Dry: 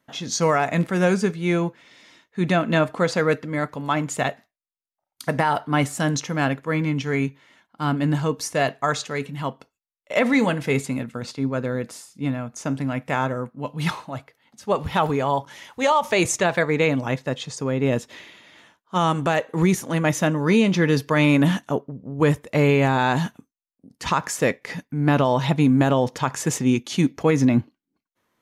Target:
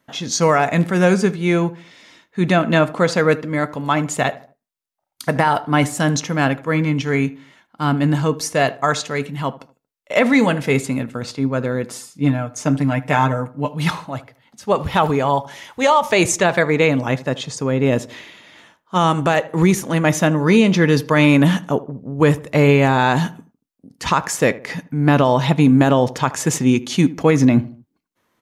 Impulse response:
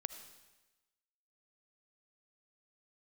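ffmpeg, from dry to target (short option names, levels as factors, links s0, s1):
-filter_complex "[0:a]asettb=1/sr,asplit=3[s0][s1][s2];[s0]atrim=end=11.904[s3];[s1]atrim=start=11.9:end=13.74,asetpts=PTS-STARTPTS,afade=t=in:d=0.004:c=qsin,afade=t=out:st=1.836:d=0.004:c=qsin,aecho=1:1:6.7:0.69,atrim=end_sample=81144[s4];[s2]atrim=start=13.736[s5];[s3][s4]acrossfade=d=0.004:c1=hsin:c2=qsin[s6];[s6][s5]acrossfade=d=0.004:c1=qsin:c2=hsin,asplit=2[s7][s8];[s8]adelay=77,lowpass=f=1400:p=1,volume=0.141,asplit=2[s9][s10];[s10]adelay=77,lowpass=f=1400:p=1,volume=0.41,asplit=2[s11][s12];[s12]adelay=77,lowpass=f=1400:p=1,volume=0.41[s13];[s9][s11][s13]amix=inputs=3:normalize=0[s14];[s7][s14]amix=inputs=2:normalize=0,volume=1.68"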